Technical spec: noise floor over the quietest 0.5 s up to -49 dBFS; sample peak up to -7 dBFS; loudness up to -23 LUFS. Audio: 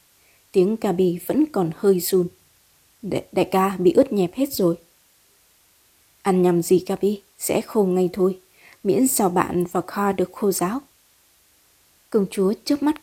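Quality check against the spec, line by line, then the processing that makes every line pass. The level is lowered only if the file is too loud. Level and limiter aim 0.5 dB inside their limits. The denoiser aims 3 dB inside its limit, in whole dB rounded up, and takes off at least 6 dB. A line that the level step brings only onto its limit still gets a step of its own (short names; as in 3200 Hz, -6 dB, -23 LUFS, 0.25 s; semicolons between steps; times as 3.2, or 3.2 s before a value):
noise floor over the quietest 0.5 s -59 dBFS: OK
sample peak -2.0 dBFS: fail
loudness -21.5 LUFS: fail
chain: gain -2 dB; limiter -7.5 dBFS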